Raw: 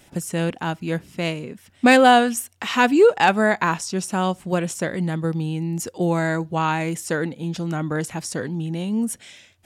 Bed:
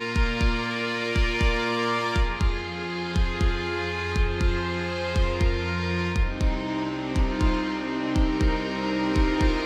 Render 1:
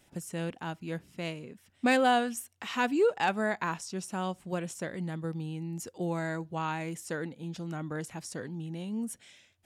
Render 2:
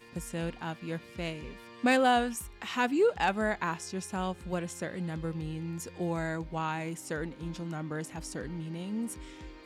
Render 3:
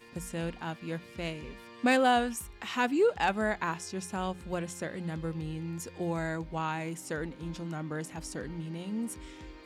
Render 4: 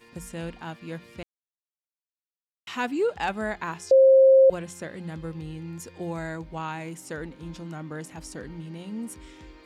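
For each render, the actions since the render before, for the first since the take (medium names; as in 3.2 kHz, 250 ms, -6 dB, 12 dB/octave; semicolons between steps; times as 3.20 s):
trim -11.5 dB
add bed -24.5 dB
hum notches 60/120/180 Hz
1.23–2.67 s: mute; 3.91–4.50 s: bleep 532 Hz -11.5 dBFS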